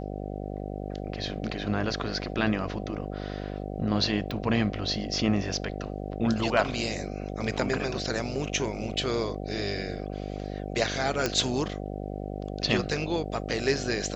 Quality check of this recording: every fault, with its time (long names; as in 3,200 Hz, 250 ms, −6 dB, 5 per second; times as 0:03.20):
mains buzz 50 Hz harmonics 15 −35 dBFS
0:04.31: click
0:11.26: click −10 dBFS